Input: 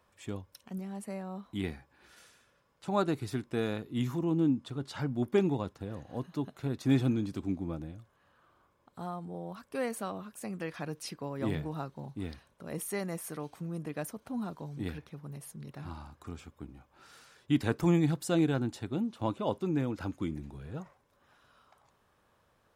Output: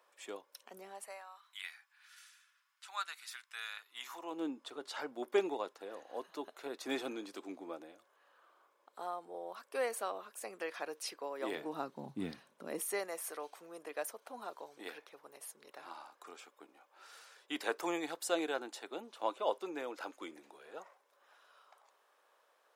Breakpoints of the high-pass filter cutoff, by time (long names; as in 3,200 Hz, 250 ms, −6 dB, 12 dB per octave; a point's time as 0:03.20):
high-pass filter 24 dB per octave
0:00.87 410 Hz
0:01.43 1,300 Hz
0:03.75 1,300 Hz
0:04.46 410 Hz
0:11.44 410 Hz
0:12.28 140 Hz
0:13.09 450 Hz